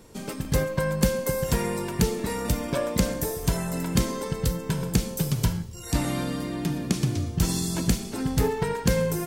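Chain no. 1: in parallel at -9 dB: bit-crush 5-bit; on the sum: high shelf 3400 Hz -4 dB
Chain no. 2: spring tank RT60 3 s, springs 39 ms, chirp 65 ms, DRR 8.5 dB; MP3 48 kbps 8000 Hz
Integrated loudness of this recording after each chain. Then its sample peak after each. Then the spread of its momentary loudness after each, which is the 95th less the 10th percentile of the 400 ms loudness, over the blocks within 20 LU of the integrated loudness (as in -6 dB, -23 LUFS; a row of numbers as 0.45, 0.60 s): -24.5, -27.5 LUFS; -5.5, -9.0 dBFS; 5, 5 LU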